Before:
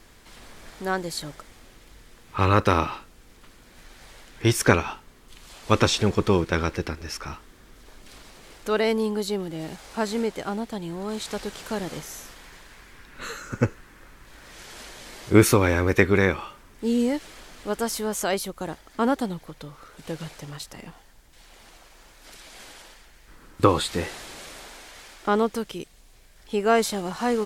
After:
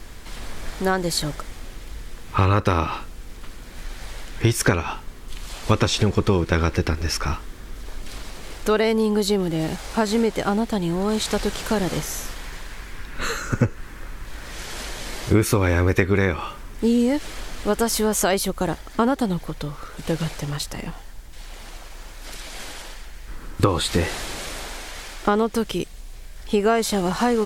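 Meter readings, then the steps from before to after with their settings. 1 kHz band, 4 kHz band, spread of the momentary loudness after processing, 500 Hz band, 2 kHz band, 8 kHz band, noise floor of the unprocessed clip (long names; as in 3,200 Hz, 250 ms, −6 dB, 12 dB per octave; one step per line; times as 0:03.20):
+1.5 dB, +4.0 dB, 20 LU, +2.0 dB, +1.5 dB, +4.5 dB, −52 dBFS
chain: low-shelf EQ 80 Hz +10 dB
downward compressor 5 to 1, threshold −24 dBFS, peak gain reduction 14.5 dB
level +8.5 dB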